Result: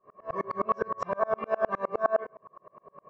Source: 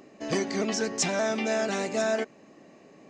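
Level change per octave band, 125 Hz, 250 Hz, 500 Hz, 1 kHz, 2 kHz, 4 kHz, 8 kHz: -9.0 dB, -12.0 dB, -1.5 dB, +4.5 dB, -7.0 dB, under -25 dB, under -30 dB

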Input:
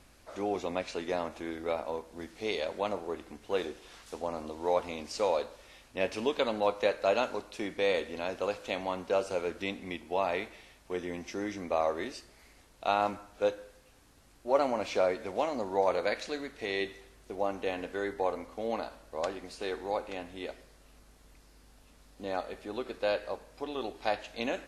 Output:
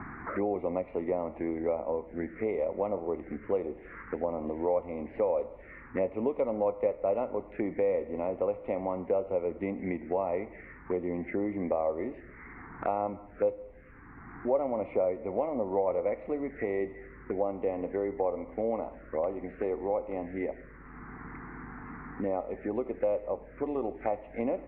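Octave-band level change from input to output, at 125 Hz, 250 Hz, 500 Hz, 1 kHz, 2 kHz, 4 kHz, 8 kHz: +4.5 dB, +4.0 dB, +2.0 dB, -2.5 dB, -6.5 dB, under -25 dB, under -30 dB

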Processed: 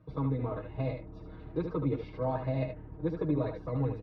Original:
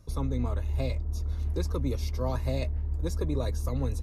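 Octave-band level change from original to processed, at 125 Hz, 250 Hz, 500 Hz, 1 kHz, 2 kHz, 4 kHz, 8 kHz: -4.0 dB, +1.5 dB, +1.0 dB, +1.5 dB, -2.5 dB, -12.5 dB, under -30 dB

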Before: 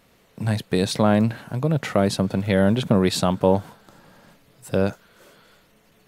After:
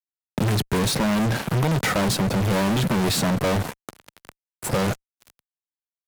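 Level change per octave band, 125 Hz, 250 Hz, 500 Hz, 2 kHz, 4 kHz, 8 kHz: +0.5, -1.5, -4.0, +4.0, +3.0, +6.0 dB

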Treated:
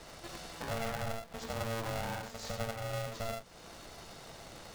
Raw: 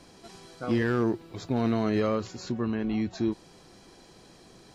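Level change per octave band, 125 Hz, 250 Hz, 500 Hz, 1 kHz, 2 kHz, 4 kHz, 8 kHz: -7.5 dB, -18.5 dB, -9.0 dB, -3.0 dB, -4.0 dB, 0.0 dB, n/a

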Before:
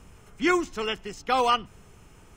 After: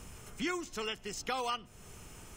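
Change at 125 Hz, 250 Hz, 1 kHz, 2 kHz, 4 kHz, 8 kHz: -4.0, -11.5, -13.0, -10.5, -8.0, -1.5 dB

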